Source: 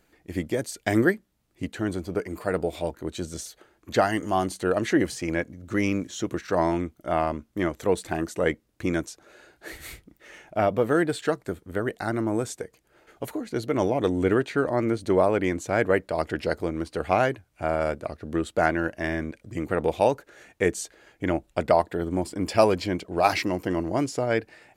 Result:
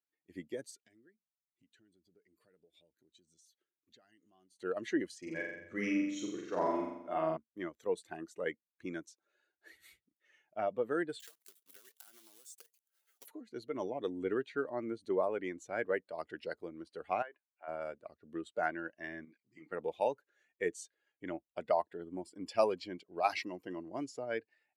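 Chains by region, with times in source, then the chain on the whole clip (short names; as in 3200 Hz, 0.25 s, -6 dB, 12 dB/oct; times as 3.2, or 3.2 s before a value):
0.8–4.59 bell 900 Hz -10 dB 1.3 oct + compressor 4:1, threshold -43 dBFS
5.18–7.37 flutter echo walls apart 7.5 m, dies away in 1.3 s + mismatched tape noise reduction decoder only
11.2–13.28 block floating point 3-bit + RIAA curve recording + compressor 12:1, threshold -31 dBFS
17.22–17.68 compressor 10:1, threshold -23 dBFS + BPF 520–2700 Hz
19.25–19.72 speaker cabinet 120–8900 Hz, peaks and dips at 530 Hz -9 dB, 2100 Hz +5 dB, 4700 Hz +9 dB + detuned doubles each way 33 cents
whole clip: per-bin expansion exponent 1.5; HPF 260 Hz 12 dB/oct; high shelf 7900 Hz -10 dB; gain -8 dB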